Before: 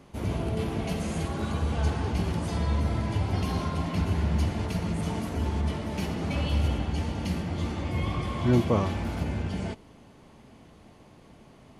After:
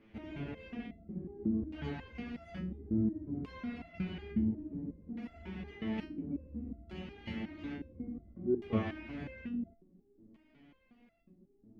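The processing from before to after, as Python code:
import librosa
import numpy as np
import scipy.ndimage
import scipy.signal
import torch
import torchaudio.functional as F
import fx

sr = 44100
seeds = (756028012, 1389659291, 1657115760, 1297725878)

y = fx.graphic_eq_10(x, sr, hz=(125, 250, 500, 1000, 2000, 4000, 8000), db=(-8, 5, -3, -9, 6, -11, -11))
y = fx.filter_lfo_lowpass(y, sr, shape='square', hz=0.58, low_hz=310.0, high_hz=3700.0, q=1.7)
y = fx.resonator_held(y, sr, hz=5.5, low_hz=110.0, high_hz=680.0)
y = y * 10.0 ** (3.5 / 20.0)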